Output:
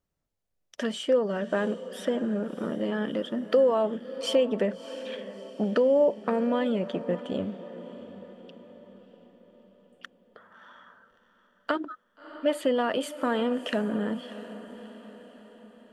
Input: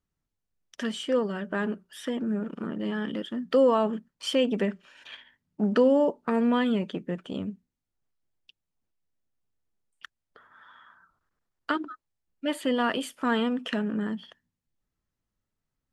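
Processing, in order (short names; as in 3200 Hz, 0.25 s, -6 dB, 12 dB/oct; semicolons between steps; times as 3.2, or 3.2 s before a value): compressor, threshold -25 dBFS, peak gain reduction 9 dB; bell 580 Hz +9.5 dB 0.75 oct; on a send: diffused feedback echo 0.648 s, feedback 50%, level -14 dB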